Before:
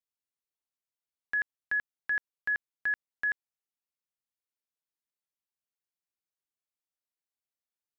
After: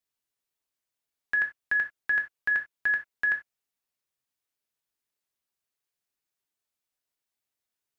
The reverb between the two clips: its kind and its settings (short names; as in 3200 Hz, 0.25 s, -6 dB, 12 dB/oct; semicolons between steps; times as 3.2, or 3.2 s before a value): non-linear reverb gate 0.11 s falling, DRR 3.5 dB; gain +4.5 dB